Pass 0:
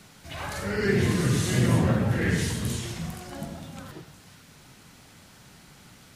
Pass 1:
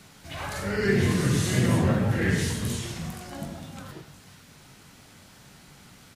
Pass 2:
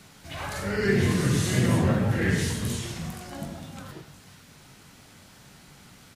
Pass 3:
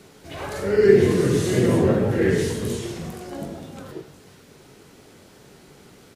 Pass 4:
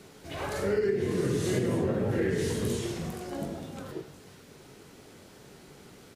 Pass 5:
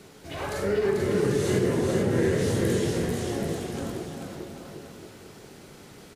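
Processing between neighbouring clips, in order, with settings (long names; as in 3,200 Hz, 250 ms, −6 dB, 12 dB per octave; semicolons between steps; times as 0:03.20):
double-tracking delay 21 ms −11 dB
no processing that can be heard
parametric band 410 Hz +14 dB 0.99 octaves; level −1 dB
downward compressor 16 to 1, threshold −21 dBFS, peak gain reduction 14 dB; level −2.5 dB
bouncing-ball delay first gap 440 ms, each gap 0.8×, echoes 5; level +2 dB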